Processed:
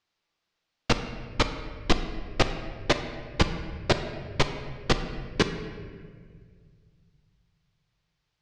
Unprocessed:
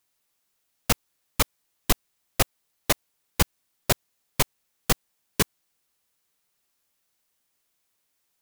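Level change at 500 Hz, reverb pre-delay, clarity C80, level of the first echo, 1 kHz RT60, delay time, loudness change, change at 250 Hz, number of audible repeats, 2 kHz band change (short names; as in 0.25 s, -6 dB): +3.0 dB, 3 ms, 10.0 dB, none, 1.6 s, none, -1.5 dB, +3.0 dB, none, +1.0 dB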